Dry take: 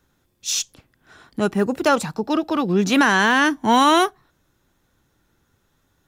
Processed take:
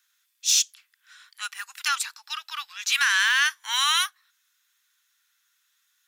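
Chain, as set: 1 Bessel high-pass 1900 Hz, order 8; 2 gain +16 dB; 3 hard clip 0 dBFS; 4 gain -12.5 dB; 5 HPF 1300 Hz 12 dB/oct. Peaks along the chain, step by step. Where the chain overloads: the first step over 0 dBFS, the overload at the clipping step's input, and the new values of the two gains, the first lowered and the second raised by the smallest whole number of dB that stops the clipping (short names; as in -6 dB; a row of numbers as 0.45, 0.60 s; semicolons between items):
-10.5, +5.5, 0.0, -12.5, -10.0 dBFS; step 2, 5.5 dB; step 2 +10 dB, step 4 -6.5 dB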